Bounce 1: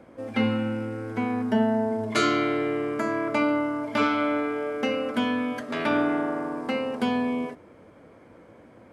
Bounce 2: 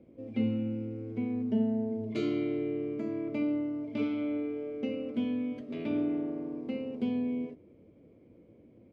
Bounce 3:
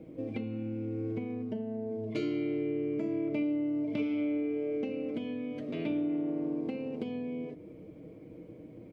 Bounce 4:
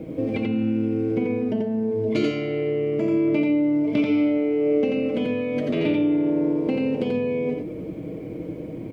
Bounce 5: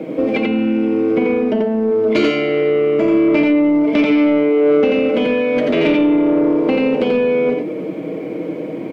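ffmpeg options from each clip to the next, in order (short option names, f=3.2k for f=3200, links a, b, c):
-af "firequalizer=gain_entry='entry(370,0);entry(840,-18);entry(1600,-24);entry(2300,-9);entry(7000,-21);entry(11000,-27)':delay=0.05:min_phase=1,volume=-4.5dB"
-af "acompressor=threshold=-40dB:ratio=6,aecho=1:1:6.4:0.5,volume=8dB"
-filter_complex "[0:a]asplit=2[a][b];[b]alimiter=level_in=8dB:limit=-24dB:level=0:latency=1,volume=-8dB,volume=1.5dB[c];[a][c]amix=inputs=2:normalize=0,aecho=1:1:87:0.708,volume=7dB"
-filter_complex "[0:a]highpass=f=150:w=0.5412,highpass=f=150:w=1.3066,asplit=2[a][b];[b]highpass=f=720:p=1,volume=14dB,asoftclip=type=tanh:threshold=-10.5dB[c];[a][c]amix=inputs=2:normalize=0,lowpass=f=2.6k:p=1,volume=-6dB,volume=6.5dB"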